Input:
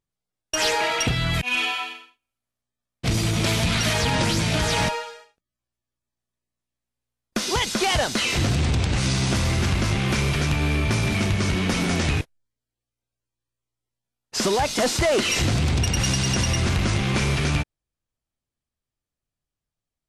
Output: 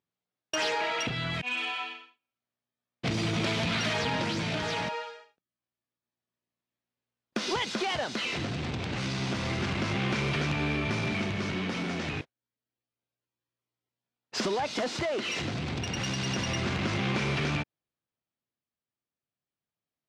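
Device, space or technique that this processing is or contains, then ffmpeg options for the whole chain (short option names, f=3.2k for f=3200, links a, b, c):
AM radio: -af "highpass=150,lowpass=4.2k,acompressor=threshold=-24dB:ratio=6,asoftclip=type=tanh:threshold=-18dB,tremolo=f=0.29:d=0.37"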